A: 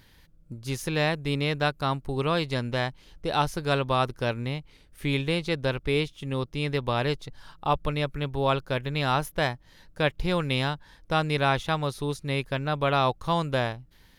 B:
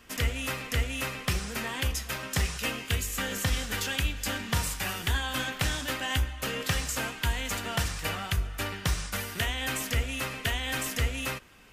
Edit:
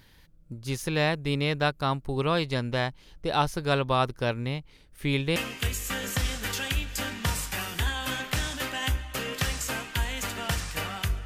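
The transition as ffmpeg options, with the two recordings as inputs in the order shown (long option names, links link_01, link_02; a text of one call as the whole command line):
ffmpeg -i cue0.wav -i cue1.wav -filter_complex "[0:a]apad=whole_dur=11.25,atrim=end=11.25,atrim=end=5.362[link_01];[1:a]atrim=start=2.638:end=8.53[link_02];[link_01][link_02]acrossfade=duration=0.004:curve1=hsin:curve2=hsin" out.wav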